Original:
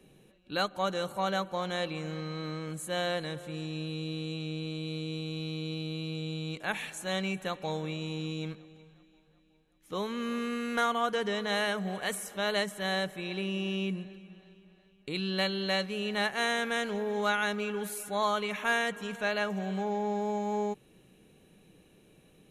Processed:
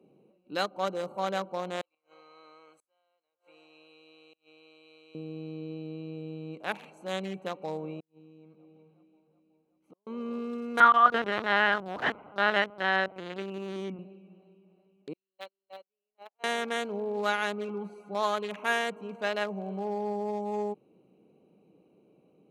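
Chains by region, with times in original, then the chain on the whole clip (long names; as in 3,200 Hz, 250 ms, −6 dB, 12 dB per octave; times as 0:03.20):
0:01.81–0:05.15: high-pass filter 1,200 Hz + gate with flip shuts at −33 dBFS, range −31 dB
0:08.00–0:10.07: downward compressor 4 to 1, threshold −50 dBFS + gate with flip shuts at −40 dBFS, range −35 dB
0:10.80–0:13.99: parametric band 1,300 Hz +11.5 dB 1.2 octaves + linear-prediction vocoder at 8 kHz pitch kept
0:15.13–0:16.44: noise gate −27 dBFS, range −48 dB + band-pass filter 570–5,400 Hz + floating-point word with a short mantissa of 2 bits
0:17.68–0:18.15: high-frequency loss of the air 82 metres + comb filter 5.7 ms, depth 61%
whole clip: adaptive Wiener filter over 25 samples; high-pass filter 230 Hz 12 dB per octave; level +1.5 dB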